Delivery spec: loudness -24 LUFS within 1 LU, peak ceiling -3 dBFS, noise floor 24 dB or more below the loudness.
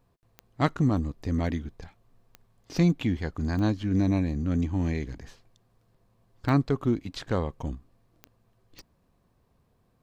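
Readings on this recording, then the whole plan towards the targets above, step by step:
clicks found 6; loudness -28.0 LUFS; peak level -9.5 dBFS; loudness target -24.0 LUFS
-> de-click; trim +4 dB

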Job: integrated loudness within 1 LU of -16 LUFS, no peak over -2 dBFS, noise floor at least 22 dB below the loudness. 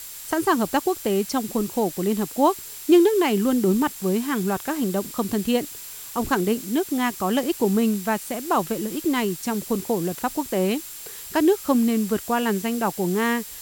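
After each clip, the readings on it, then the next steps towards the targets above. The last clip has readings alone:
steady tone 7.5 kHz; tone level -45 dBFS; noise floor -38 dBFS; noise floor target -45 dBFS; loudness -23.0 LUFS; peak level -5.5 dBFS; loudness target -16.0 LUFS
-> band-stop 7.5 kHz, Q 30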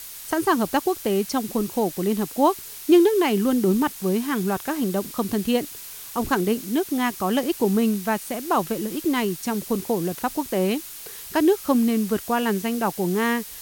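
steady tone not found; noise floor -39 dBFS; noise floor target -45 dBFS
-> noise reduction 6 dB, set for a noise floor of -39 dBFS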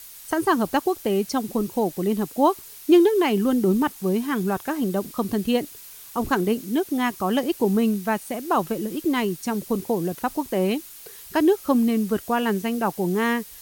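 noise floor -43 dBFS; noise floor target -46 dBFS
-> noise reduction 6 dB, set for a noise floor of -43 dBFS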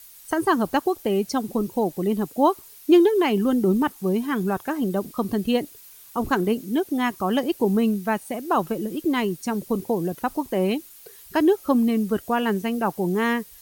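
noise floor -47 dBFS; loudness -23.5 LUFS; peak level -6.0 dBFS; loudness target -16.0 LUFS
-> trim +7.5 dB; peak limiter -2 dBFS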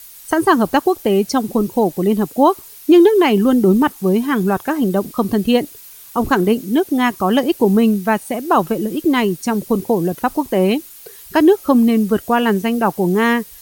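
loudness -16.0 LUFS; peak level -2.0 dBFS; noise floor -40 dBFS

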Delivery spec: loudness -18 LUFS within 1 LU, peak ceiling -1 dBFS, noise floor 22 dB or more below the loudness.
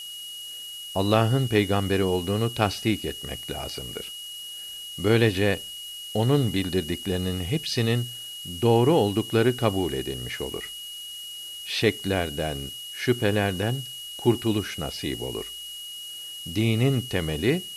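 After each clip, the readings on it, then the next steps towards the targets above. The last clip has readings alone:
steady tone 2.9 kHz; tone level -36 dBFS; noise floor -38 dBFS; noise floor target -48 dBFS; loudness -26.0 LUFS; peak level -5.0 dBFS; loudness target -18.0 LUFS
-> band-stop 2.9 kHz, Q 30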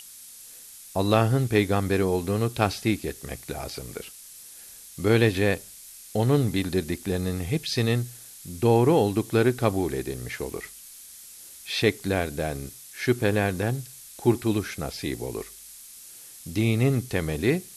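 steady tone not found; noise floor -46 dBFS; noise floor target -48 dBFS
-> noise reduction 6 dB, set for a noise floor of -46 dBFS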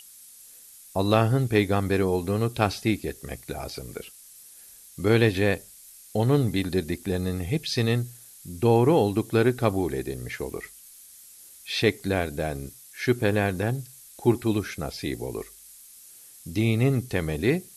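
noise floor -49 dBFS; loudness -25.5 LUFS; peak level -5.0 dBFS; loudness target -18.0 LUFS
-> trim +7.5 dB; peak limiter -1 dBFS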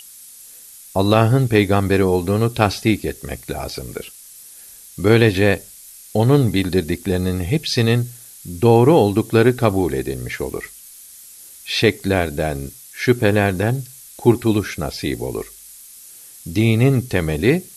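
loudness -18.0 LUFS; peak level -1.0 dBFS; noise floor -42 dBFS

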